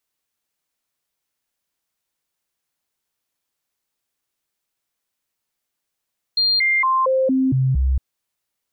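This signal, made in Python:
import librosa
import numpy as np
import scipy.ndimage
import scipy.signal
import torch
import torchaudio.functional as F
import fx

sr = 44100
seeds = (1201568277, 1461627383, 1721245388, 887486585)

y = fx.stepped_sweep(sr, from_hz=4200.0, direction='down', per_octave=1, tones=7, dwell_s=0.23, gap_s=0.0, level_db=-14.5)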